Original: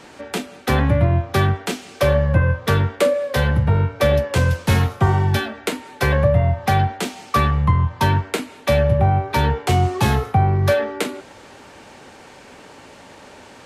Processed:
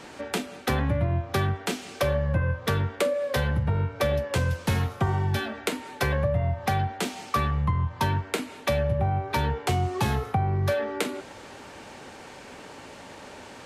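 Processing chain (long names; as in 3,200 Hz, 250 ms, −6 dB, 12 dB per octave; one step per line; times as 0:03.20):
downward compressor 2.5 to 1, threshold −24 dBFS, peak gain reduction 9 dB
level −1 dB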